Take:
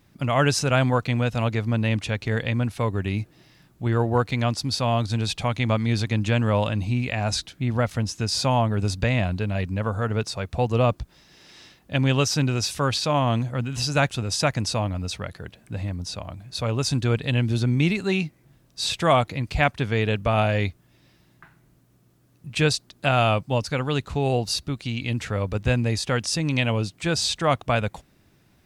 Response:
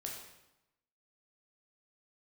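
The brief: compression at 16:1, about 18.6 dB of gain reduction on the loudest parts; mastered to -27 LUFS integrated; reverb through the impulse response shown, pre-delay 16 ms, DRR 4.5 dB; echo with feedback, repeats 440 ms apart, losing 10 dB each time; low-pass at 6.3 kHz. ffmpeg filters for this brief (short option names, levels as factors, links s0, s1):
-filter_complex "[0:a]lowpass=6300,acompressor=threshold=0.02:ratio=16,aecho=1:1:440|880|1320|1760:0.316|0.101|0.0324|0.0104,asplit=2[s0][s1];[1:a]atrim=start_sample=2205,adelay=16[s2];[s1][s2]afir=irnorm=-1:irlink=0,volume=0.708[s3];[s0][s3]amix=inputs=2:normalize=0,volume=2.99"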